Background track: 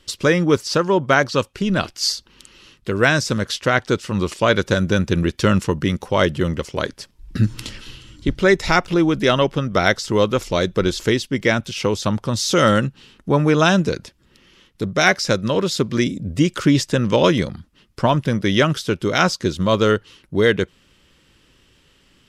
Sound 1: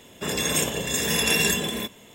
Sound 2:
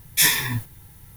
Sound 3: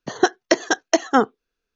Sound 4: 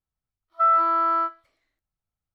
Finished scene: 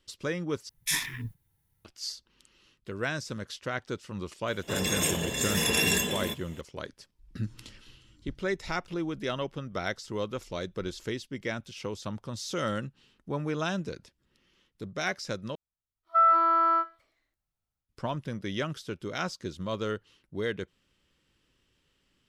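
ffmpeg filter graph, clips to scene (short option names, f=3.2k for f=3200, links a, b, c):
-filter_complex "[0:a]volume=-16dB[a];[2:a]afwtdn=0.0501[b];[1:a]aresample=32000,aresample=44100[c];[4:a]dynaudnorm=f=280:g=3:m=11.5dB[d];[a]asplit=3[e][f][g];[e]atrim=end=0.694[h];[b]atrim=end=1.16,asetpts=PTS-STARTPTS,volume=-10dB[i];[f]atrim=start=1.846:end=15.554[j];[d]atrim=end=2.34,asetpts=PTS-STARTPTS,volume=-11.5dB[k];[g]atrim=start=17.886[l];[c]atrim=end=2.14,asetpts=PTS-STARTPTS,volume=-4dB,afade=t=in:d=0.004:c=hsin,afade=t=out:st=2.136:d=0.004:c=hsin,adelay=4470[m];[h][i]acrossfade=d=0.004:c1=hsin:c2=hsin[n];[n][j]acrossfade=d=0.004:c1=hsin:c2=hsin[o];[o][k]acrossfade=d=0.004:c1=hsin:c2=hsin[p];[p][l]acrossfade=d=0.004:c1=hsin:c2=hsin[q];[q][m]amix=inputs=2:normalize=0"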